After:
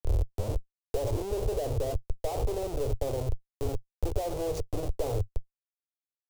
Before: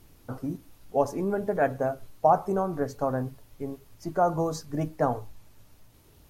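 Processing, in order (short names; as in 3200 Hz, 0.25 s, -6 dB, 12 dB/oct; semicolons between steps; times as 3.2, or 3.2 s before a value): tape start at the beginning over 0.63 s; Schmitt trigger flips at -38 dBFS; EQ curve 100 Hz 0 dB, 180 Hz -28 dB, 460 Hz -3 dB, 1700 Hz -27 dB, 2600 Hz -20 dB, 7300 Hz -13 dB; three-band squash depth 40%; gain +7.5 dB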